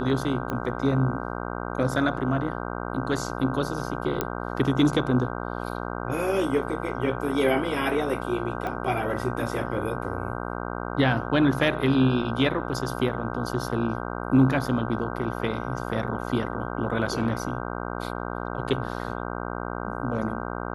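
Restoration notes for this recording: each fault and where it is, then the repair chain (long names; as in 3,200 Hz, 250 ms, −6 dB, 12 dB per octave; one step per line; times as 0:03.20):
mains buzz 60 Hz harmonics 26 −32 dBFS
0:00.50: click −17 dBFS
0:04.21: click −10 dBFS
0:08.67: click −19 dBFS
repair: click removal
hum removal 60 Hz, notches 26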